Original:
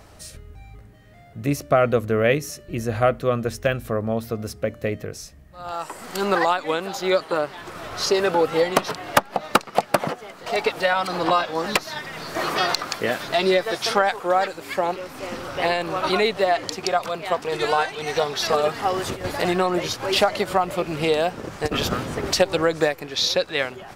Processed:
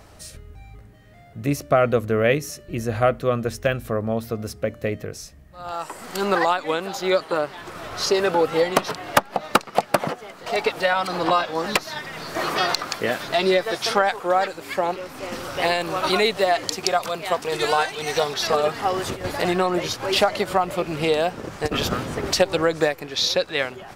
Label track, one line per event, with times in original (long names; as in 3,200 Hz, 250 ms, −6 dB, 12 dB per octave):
15.320000	18.340000	high-shelf EQ 4,900 Hz +8 dB